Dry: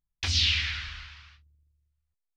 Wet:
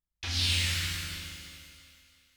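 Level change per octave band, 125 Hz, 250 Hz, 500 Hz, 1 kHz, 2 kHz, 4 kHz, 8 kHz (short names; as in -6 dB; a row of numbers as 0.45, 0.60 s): +0.5 dB, +5.0 dB, n/a, -0.5 dB, -2.5 dB, -3.0 dB, +3.0 dB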